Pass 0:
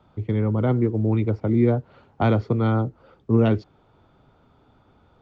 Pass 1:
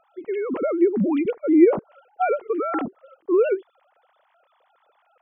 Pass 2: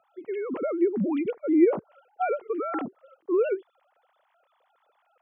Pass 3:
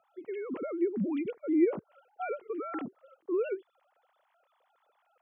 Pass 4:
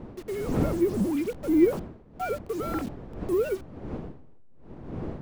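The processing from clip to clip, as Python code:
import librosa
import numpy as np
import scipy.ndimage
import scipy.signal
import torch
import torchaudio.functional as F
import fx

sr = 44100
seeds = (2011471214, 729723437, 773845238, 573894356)

y1 = fx.sine_speech(x, sr)
y2 = scipy.signal.sosfilt(scipy.signal.butter(4, 94.0, 'highpass', fs=sr, output='sos'), y1)
y2 = F.gain(torch.from_numpy(y2), -5.0).numpy()
y3 = fx.dynamic_eq(y2, sr, hz=760.0, q=0.83, threshold_db=-39.0, ratio=4.0, max_db=-7)
y3 = F.gain(torch.from_numpy(y3), -3.5).numpy()
y4 = fx.delta_hold(y3, sr, step_db=-44.5)
y4 = fx.dmg_wind(y4, sr, seeds[0], corner_hz=310.0, level_db=-41.0)
y4 = F.gain(torch.from_numpy(y4), 5.0).numpy()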